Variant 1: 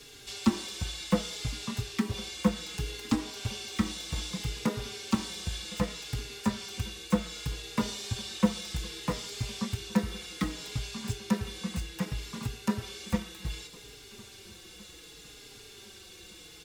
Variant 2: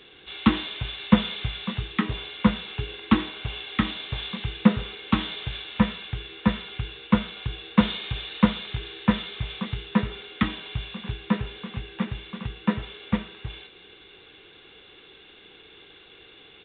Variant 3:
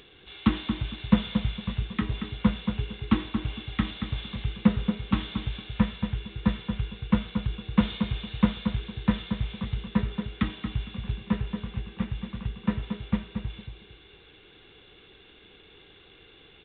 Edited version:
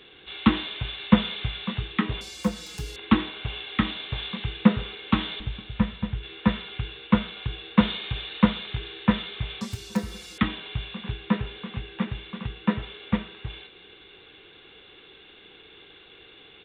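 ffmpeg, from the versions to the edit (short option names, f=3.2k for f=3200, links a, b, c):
-filter_complex "[0:a]asplit=2[a][b];[1:a]asplit=4[c][d][e][f];[c]atrim=end=2.212[g];[a]atrim=start=2.208:end=2.962[h];[d]atrim=start=2.958:end=5.402[i];[2:a]atrim=start=5.398:end=6.232[j];[e]atrim=start=6.228:end=9.612[k];[b]atrim=start=9.608:end=10.382[l];[f]atrim=start=10.378[m];[g][h]acrossfade=d=0.004:c1=hsin:c2=hsin[n];[n][i]acrossfade=d=0.004:c1=hsin:c2=hsin[o];[o][j]acrossfade=d=0.004:c1=hsin:c2=hsin[p];[p][k]acrossfade=d=0.004:c1=hsin:c2=hsin[q];[q][l]acrossfade=d=0.004:c1=hsin:c2=hsin[r];[r][m]acrossfade=d=0.004:c1=hsin:c2=hsin"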